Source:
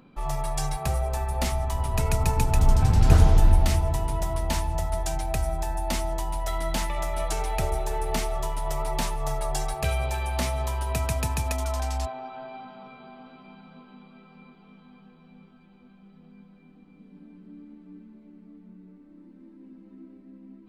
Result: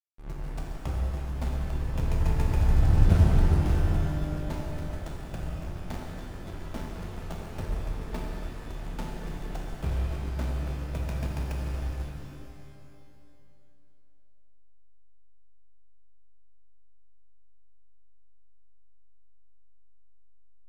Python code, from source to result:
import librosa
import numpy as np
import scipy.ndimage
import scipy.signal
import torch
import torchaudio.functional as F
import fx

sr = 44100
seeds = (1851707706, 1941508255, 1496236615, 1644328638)

y = fx.backlash(x, sr, play_db=-17.5)
y = fx.rev_shimmer(y, sr, seeds[0], rt60_s=2.4, semitones=12, shimmer_db=-8, drr_db=-0.5)
y = y * librosa.db_to_amplitude(-4.5)